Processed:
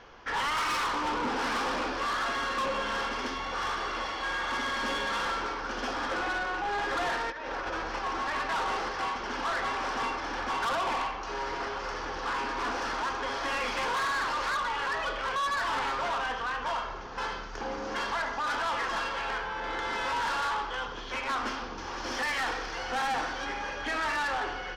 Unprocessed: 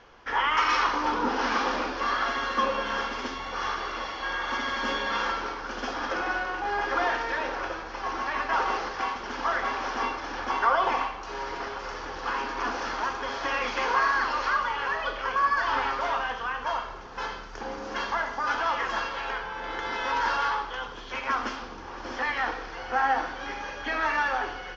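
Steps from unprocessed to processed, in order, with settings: 7.3–7.99 negative-ratio compressor -34 dBFS, ratio -0.5; 21.77–23.44 high shelf 3500 Hz -> 5300 Hz +12 dB; soft clip -29 dBFS, distortion -8 dB; gain +2 dB

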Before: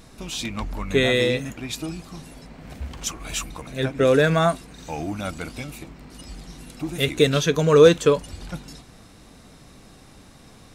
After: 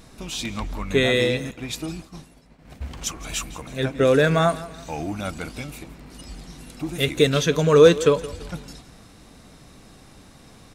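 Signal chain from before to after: feedback echo 0.168 s, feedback 39%, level -17.5 dB; 1.51–2.82 expander -33 dBFS

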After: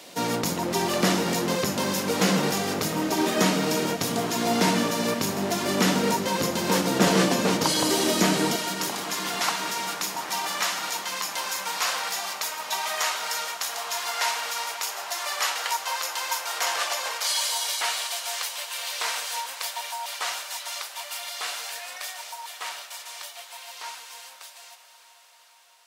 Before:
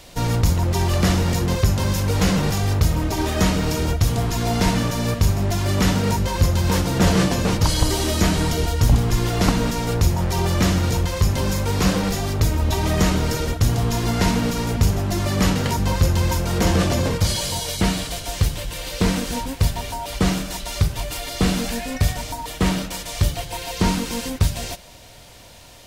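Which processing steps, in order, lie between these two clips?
ending faded out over 6.96 s; HPF 200 Hz 24 dB/oct, from 8.56 s 790 Hz; diffused feedback echo 0.465 s, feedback 73%, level -15 dB

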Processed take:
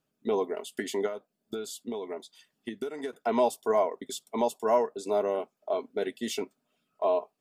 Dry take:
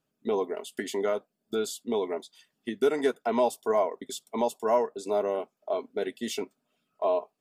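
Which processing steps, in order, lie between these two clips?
1.06–3.13 compressor 8:1, threshold -32 dBFS, peak gain reduction 13.5 dB

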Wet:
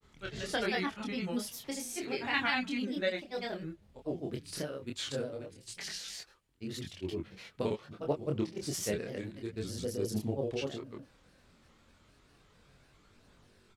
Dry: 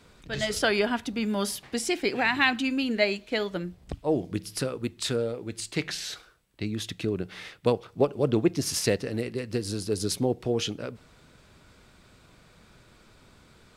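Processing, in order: grains, grains 20/s, pitch spread up and down by 3 st; chorus voices 2, 0.15 Hz, delay 25 ms, depth 4.2 ms; gain -3.5 dB

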